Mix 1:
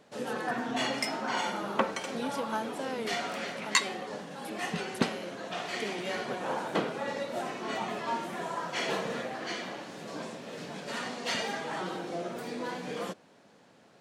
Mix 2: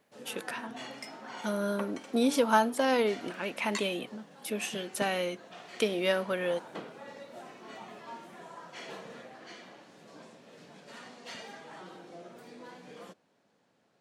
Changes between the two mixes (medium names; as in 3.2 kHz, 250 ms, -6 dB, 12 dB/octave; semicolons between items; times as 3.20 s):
speech +10.0 dB; background -12.0 dB